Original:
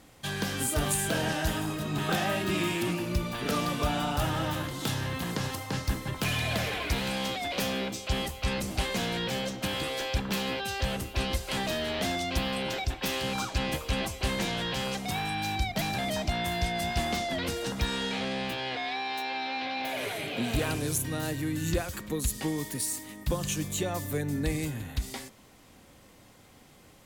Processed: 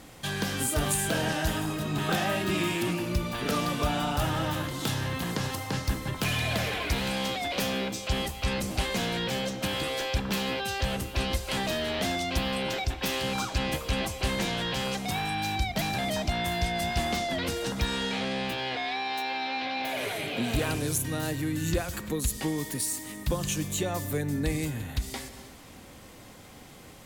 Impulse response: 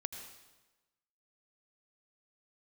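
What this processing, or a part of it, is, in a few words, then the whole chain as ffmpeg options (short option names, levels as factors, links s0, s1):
ducked reverb: -filter_complex "[0:a]asplit=3[s0][s1][s2];[1:a]atrim=start_sample=2205[s3];[s1][s3]afir=irnorm=-1:irlink=0[s4];[s2]apad=whole_len=1193220[s5];[s4][s5]sidechaincompress=threshold=0.00447:ratio=8:attack=16:release=191,volume=1.41[s6];[s0][s6]amix=inputs=2:normalize=0"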